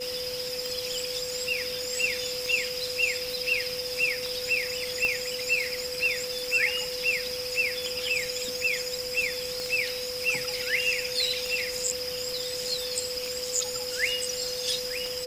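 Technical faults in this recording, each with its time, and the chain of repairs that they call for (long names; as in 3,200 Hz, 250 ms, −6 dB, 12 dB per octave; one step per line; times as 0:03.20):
scratch tick 33 1/3 rpm
whistle 500 Hz −34 dBFS
0:05.05: click −15 dBFS
0:09.60: click −20 dBFS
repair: click removal
notch filter 500 Hz, Q 30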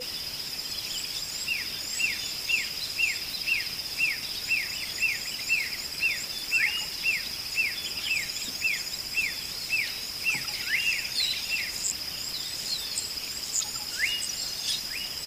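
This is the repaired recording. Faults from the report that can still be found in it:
0:05.05: click
0:09.60: click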